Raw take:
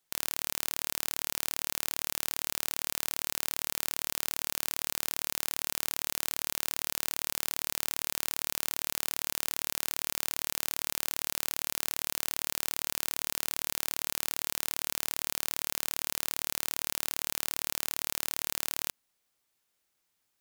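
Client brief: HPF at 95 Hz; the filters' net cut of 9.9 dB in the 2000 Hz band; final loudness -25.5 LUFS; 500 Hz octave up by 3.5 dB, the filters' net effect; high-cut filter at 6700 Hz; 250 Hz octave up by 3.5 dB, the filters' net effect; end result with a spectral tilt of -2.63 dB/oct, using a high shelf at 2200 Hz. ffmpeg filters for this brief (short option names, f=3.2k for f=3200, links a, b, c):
-af "highpass=95,lowpass=6.7k,equalizer=f=250:t=o:g=3.5,equalizer=f=500:t=o:g=4.5,equalizer=f=2k:t=o:g=-8.5,highshelf=f=2.2k:g=-8,volume=18dB"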